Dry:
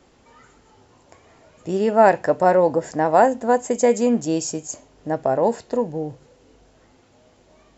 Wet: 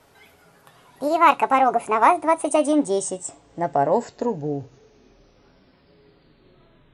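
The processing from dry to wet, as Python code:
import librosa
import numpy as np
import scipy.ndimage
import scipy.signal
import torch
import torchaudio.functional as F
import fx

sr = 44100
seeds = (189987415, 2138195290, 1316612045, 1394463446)

y = fx.speed_glide(x, sr, from_pct=173, to_pct=51)
y = y + 0.31 * np.pad(y, (int(7.2 * sr / 1000.0), 0))[:len(y)]
y = y * librosa.db_to_amplitude(-1.0)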